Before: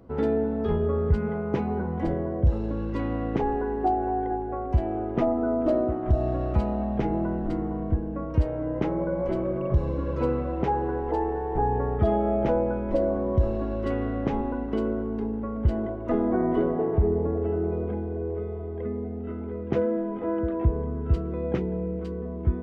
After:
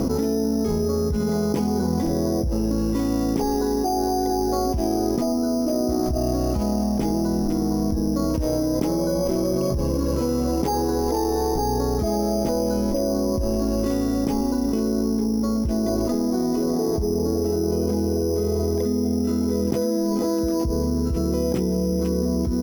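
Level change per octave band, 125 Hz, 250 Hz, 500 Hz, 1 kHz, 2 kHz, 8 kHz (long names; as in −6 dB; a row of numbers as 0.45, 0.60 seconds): +0.5 dB, +7.0 dB, +3.0 dB, +1.5 dB, −2.0 dB, can't be measured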